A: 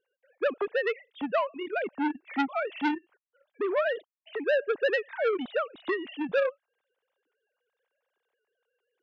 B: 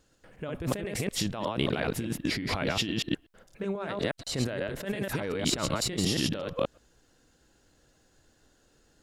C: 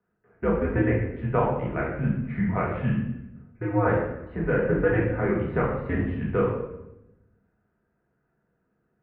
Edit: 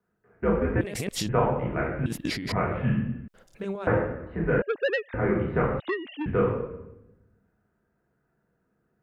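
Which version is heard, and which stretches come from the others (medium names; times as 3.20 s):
C
0.81–1.29 s: from B
2.06–2.52 s: from B
3.28–3.87 s: from B
4.62–5.14 s: from A
5.80–6.26 s: from A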